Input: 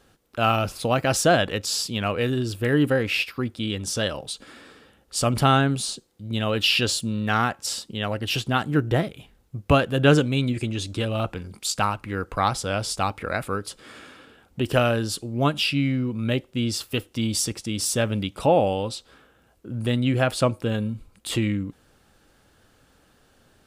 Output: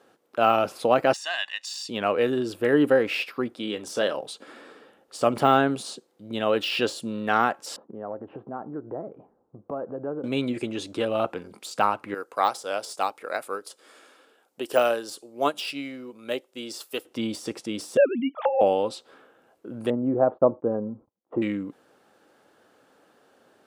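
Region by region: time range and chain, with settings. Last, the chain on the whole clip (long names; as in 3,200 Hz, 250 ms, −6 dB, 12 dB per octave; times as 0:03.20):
0:01.13–0:01.89: flat-topped band-pass 4,200 Hz, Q 0.65 + comb filter 1.1 ms, depth 82%
0:03.48–0:04.16: high-pass filter 160 Hz 6 dB per octave + double-tracking delay 33 ms −13 dB
0:07.76–0:10.24: low-pass filter 1,100 Hz 24 dB per octave + downward compressor 4 to 1, threshold −32 dBFS
0:12.14–0:17.05: bass and treble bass −12 dB, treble +12 dB + expander for the loud parts, over −35 dBFS
0:17.97–0:18.61: three sine waves on the formant tracks + parametric band 2,000 Hz −2.5 dB 1.3 octaves + compressor whose output falls as the input rises −21 dBFS, ratio −0.5
0:19.90–0:21.42: low-pass filter 1,000 Hz 24 dB per octave + noise gate −47 dBFS, range −28 dB
whole clip: tilt shelving filter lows +6.5 dB, about 1,500 Hz; de-essing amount 70%; high-pass filter 380 Hz 12 dB per octave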